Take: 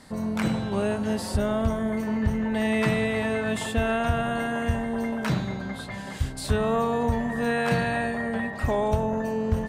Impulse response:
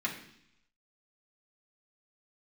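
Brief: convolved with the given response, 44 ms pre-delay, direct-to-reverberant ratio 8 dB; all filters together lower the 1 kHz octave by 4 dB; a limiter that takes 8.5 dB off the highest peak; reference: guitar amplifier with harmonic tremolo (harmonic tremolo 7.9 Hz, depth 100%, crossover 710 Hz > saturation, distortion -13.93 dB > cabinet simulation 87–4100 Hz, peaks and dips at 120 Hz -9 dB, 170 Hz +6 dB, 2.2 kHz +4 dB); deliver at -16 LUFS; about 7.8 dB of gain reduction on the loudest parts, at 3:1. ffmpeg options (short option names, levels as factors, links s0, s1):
-filter_complex "[0:a]equalizer=f=1000:t=o:g=-6,acompressor=threshold=0.0355:ratio=3,alimiter=level_in=1.41:limit=0.0631:level=0:latency=1,volume=0.708,asplit=2[s0][s1];[1:a]atrim=start_sample=2205,adelay=44[s2];[s1][s2]afir=irnorm=-1:irlink=0,volume=0.2[s3];[s0][s3]amix=inputs=2:normalize=0,acrossover=split=710[s4][s5];[s4]aeval=exprs='val(0)*(1-1/2+1/2*cos(2*PI*7.9*n/s))':c=same[s6];[s5]aeval=exprs='val(0)*(1-1/2-1/2*cos(2*PI*7.9*n/s))':c=same[s7];[s6][s7]amix=inputs=2:normalize=0,asoftclip=threshold=0.02,highpass=87,equalizer=f=120:t=q:w=4:g=-9,equalizer=f=170:t=q:w=4:g=6,equalizer=f=2200:t=q:w=4:g=4,lowpass=f=4100:w=0.5412,lowpass=f=4100:w=1.3066,volume=18.8"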